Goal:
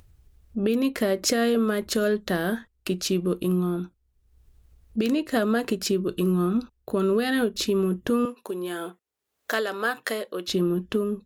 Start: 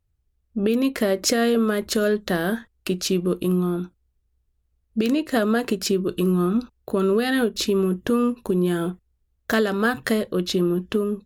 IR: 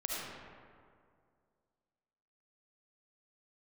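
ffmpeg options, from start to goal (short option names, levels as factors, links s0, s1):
-filter_complex "[0:a]asettb=1/sr,asplit=3[s0][s1][s2];[s0]atrim=end=8.254[s3];[s1]atrim=start=8.25:end=10.48,asetpts=PTS-STARTPTS,afade=t=in:d=0.004:c=qsin,afade=t=out:st=2.226:d=0.004:c=qsin,highpass=460[s4];[s2]atrim=start=10.476[s5];[s3][s4]acrossfade=d=0.004:c1=hsin:c2=qsin[s6];[s6][s5]acrossfade=d=0.004:c1=qsin:c2=hsin,acompressor=mode=upward:threshold=0.0141:ratio=2.5,volume=0.75"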